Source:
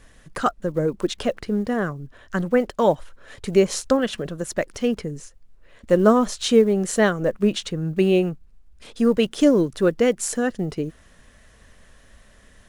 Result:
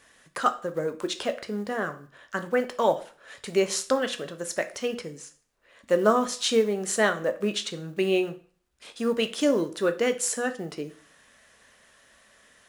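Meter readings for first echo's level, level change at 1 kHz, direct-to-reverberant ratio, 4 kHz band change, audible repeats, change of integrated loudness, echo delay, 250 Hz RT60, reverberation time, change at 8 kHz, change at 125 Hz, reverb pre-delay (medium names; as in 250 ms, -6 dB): no echo, -2.0 dB, 8.0 dB, -0.5 dB, no echo, -5.0 dB, no echo, 0.45 s, 0.45 s, -0.5 dB, -12.0 dB, 5 ms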